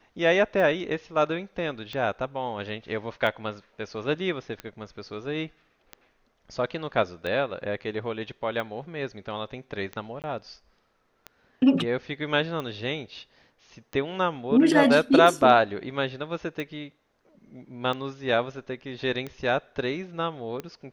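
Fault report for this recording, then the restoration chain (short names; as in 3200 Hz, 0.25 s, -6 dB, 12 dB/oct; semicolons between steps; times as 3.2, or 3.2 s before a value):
tick 45 rpm -20 dBFS
10.22–10.24 gap 18 ms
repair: de-click; interpolate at 10.22, 18 ms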